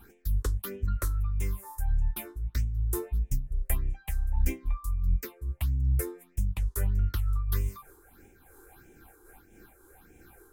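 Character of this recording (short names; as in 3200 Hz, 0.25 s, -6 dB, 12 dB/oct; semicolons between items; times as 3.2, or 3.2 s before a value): phasing stages 6, 1.6 Hz, lowest notch 170–1200 Hz; noise-modulated level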